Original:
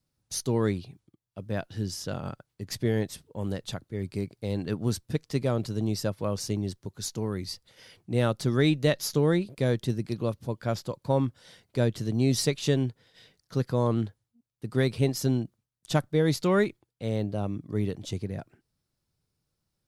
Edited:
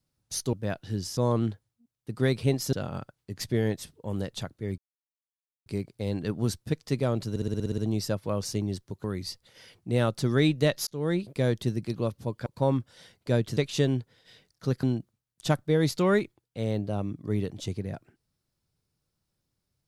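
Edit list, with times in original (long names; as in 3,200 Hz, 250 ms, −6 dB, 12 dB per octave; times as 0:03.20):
0:00.53–0:01.40: remove
0:04.09: splice in silence 0.88 s
0:05.73: stutter 0.06 s, 9 plays
0:06.99–0:07.26: remove
0:09.09–0:09.43: fade in
0:10.68–0:10.94: remove
0:12.05–0:12.46: remove
0:13.72–0:15.28: move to 0:02.04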